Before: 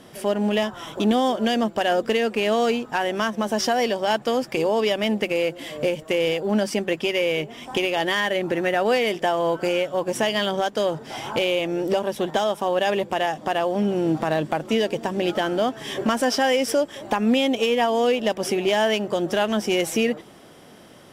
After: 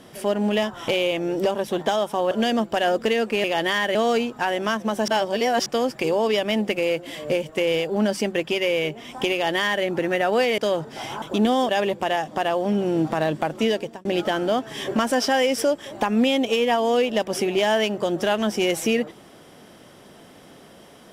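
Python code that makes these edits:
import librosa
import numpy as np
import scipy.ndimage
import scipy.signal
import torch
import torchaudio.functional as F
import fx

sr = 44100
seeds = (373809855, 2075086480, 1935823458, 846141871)

y = fx.edit(x, sr, fx.swap(start_s=0.88, length_s=0.47, other_s=11.36, other_length_s=1.43),
    fx.reverse_span(start_s=3.61, length_s=0.58),
    fx.duplicate(start_s=7.86, length_s=0.51, to_s=2.48),
    fx.cut(start_s=9.11, length_s=1.61),
    fx.fade_out_span(start_s=14.81, length_s=0.34), tone=tone)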